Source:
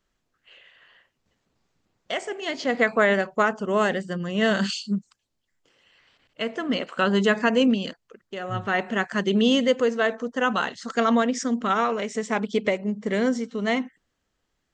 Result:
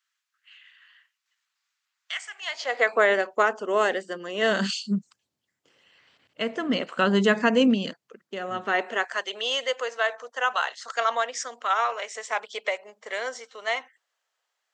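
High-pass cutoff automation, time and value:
high-pass 24 dB/octave
2.27 s 1.3 kHz
3.01 s 310 Hz
4.42 s 310 Hz
4.94 s 91 Hz
7.88 s 91 Hz
8.66 s 240 Hz
9.26 s 620 Hz

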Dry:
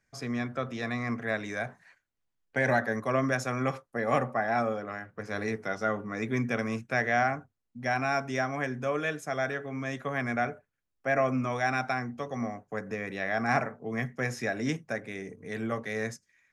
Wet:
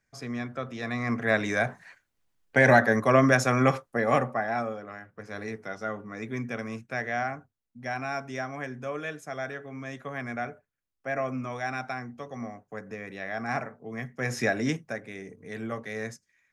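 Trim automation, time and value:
0.75 s -1.5 dB
1.38 s +7.5 dB
3.73 s +7.5 dB
4.77 s -4 dB
14.12 s -4 dB
14.40 s +6.5 dB
14.99 s -2 dB

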